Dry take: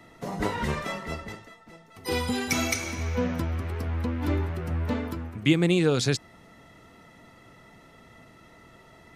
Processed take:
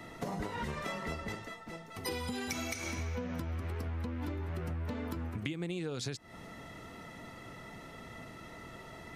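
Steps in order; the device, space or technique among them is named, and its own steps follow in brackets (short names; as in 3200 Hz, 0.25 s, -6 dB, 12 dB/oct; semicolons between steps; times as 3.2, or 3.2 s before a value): serial compression, leveller first (compressor 2.5:1, threshold -29 dBFS, peak gain reduction 9.5 dB; compressor, threshold -39 dBFS, peak gain reduction 14.5 dB); gain +4 dB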